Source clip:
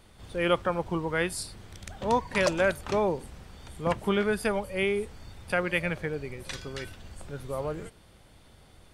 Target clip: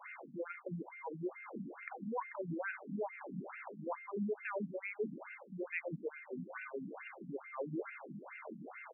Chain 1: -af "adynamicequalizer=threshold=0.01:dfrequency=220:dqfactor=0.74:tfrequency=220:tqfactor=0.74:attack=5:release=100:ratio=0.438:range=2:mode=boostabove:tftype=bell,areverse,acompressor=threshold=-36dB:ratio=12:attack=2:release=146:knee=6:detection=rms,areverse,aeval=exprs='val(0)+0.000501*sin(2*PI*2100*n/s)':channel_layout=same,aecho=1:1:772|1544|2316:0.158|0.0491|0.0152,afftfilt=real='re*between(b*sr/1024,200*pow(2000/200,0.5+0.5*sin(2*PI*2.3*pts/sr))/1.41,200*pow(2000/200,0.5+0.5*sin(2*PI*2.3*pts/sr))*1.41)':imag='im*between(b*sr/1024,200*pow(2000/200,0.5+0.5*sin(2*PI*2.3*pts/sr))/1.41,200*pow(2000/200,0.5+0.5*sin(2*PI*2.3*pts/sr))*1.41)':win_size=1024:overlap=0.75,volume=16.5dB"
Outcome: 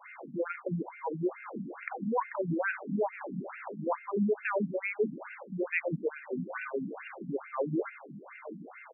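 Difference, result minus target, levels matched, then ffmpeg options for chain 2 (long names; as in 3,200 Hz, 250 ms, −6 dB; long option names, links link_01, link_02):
downward compressor: peak gain reduction −9 dB
-af "adynamicequalizer=threshold=0.01:dfrequency=220:dqfactor=0.74:tfrequency=220:tqfactor=0.74:attack=5:release=100:ratio=0.438:range=2:mode=boostabove:tftype=bell,areverse,acompressor=threshold=-46dB:ratio=12:attack=2:release=146:knee=6:detection=rms,areverse,aeval=exprs='val(0)+0.000501*sin(2*PI*2100*n/s)':channel_layout=same,aecho=1:1:772|1544|2316:0.158|0.0491|0.0152,afftfilt=real='re*between(b*sr/1024,200*pow(2000/200,0.5+0.5*sin(2*PI*2.3*pts/sr))/1.41,200*pow(2000/200,0.5+0.5*sin(2*PI*2.3*pts/sr))*1.41)':imag='im*between(b*sr/1024,200*pow(2000/200,0.5+0.5*sin(2*PI*2.3*pts/sr))/1.41,200*pow(2000/200,0.5+0.5*sin(2*PI*2.3*pts/sr))*1.41)':win_size=1024:overlap=0.75,volume=16.5dB"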